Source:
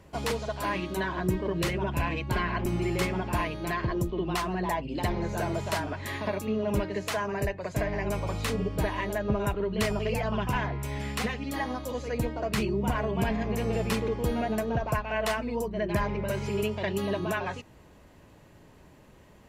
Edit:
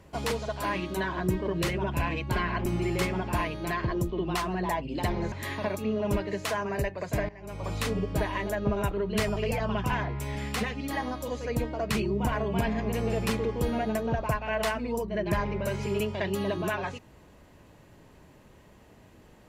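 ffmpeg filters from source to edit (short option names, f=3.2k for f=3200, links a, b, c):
-filter_complex "[0:a]asplit=3[a][b][c];[a]atrim=end=5.322[d];[b]atrim=start=5.948:end=7.92,asetpts=PTS-STARTPTS,afade=t=out:st=1.968:d=0.004:c=hsin:silence=0.11885[e];[c]atrim=start=7.92,asetpts=PTS-STARTPTS,afade=t=in:d=0.43:c=qua:silence=0.11885[f];[e][f]concat=n=2:v=0:a=1[g];[d][g]acrossfade=d=0.004:c1=hsin:c2=hsin"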